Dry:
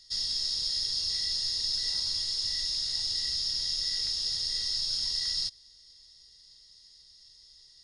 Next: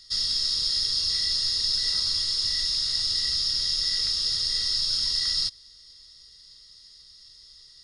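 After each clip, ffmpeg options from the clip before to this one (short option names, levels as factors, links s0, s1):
-af "equalizer=f=800:t=o:w=0.33:g=-11,equalizer=f=1250:t=o:w=0.33:g=9,equalizer=f=6300:t=o:w=0.33:g=-4,volume=2"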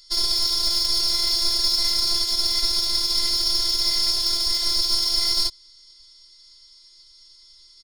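-af "aeval=exprs='0.237*(cos(1*acos(clip(val(0)/0.237,-1,1)))-cos(1*PI/2))+0.0168*(cos(6*acos(clip(val(0)/0.237,-1,1)))-cos(6*PI/2))+0.0133*(cos(7*acos(clip(val(0)/0.237,-1,1)))-cos(7*PI/2))':c=same,afftfilt=real='hypot(re,im)*cos(PI*b)':imag='0':win_size=512:overlap=0.75,aecho=1:1:4.9:0.53,volume=2.24"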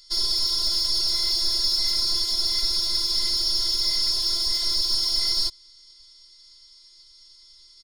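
-af "acontrast=87,volume=0.398"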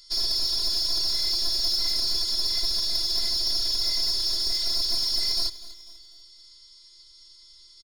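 -af "asoftclip=type=tanh:threshold=0.15,aecho=1:1:247|494|741|988:0.158|0.0682|0.0293|0.0126"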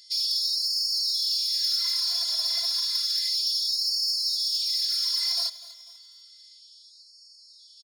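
-af "afftfilt=real='re*gte(b*sr/1024,570*pow(4300/570,0.5+0.5*sin(2*PI*0.31*pts/sr)))':imag='im*gte(b*sr/1024,570*pow(4300/570,0.5+0.5*sin(2*PI*0.31*pts/sr)))':win_size=1024:overlap=0.75"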